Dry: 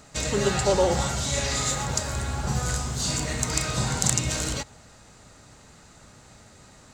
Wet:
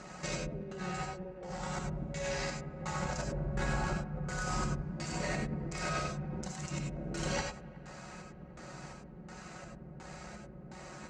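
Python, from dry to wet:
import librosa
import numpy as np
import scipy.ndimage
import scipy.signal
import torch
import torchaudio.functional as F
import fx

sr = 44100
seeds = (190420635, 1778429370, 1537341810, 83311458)

p1 = scipy.signal.sosfilt(scipy.signal.butter(2, 97.0, 'highpass', fs=sr, output='sos'), x)
p2 = fx.peak_eq(p1, sr, hz=3600.0, db=-9.0, octaves=0.58)
p3 = fx.over_compress(p2, sr, threshold_db=-35.0, ratio=-1.0)
p4 = fx.stretch_grains(p3, sr, factor=1.6, grain_ms=29.0)
p5 = fx.filter_lfo_lowpass(p4, sr, shape='square', hz=1.4, low_hz=410.0, high_hz=4700.0, q=0.8)
p6 = p5 + fx.echo_wet_bandpass(p5, sr, ms=186, feedback_pct=79, hz=1200.0, wet_db=-20.5, dry=0)
p7 = fx.rev_gated(p6, sr, seeds[0], gate_ms=120, shape='rising', drr_db=2.0)
y = p7 * librosa.db_to_amplitude(-1.5)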